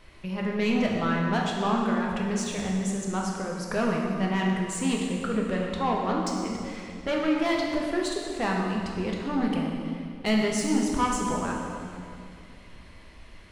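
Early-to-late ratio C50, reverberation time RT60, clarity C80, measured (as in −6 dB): 1.0 dB, 2.3 s, 2.5 dB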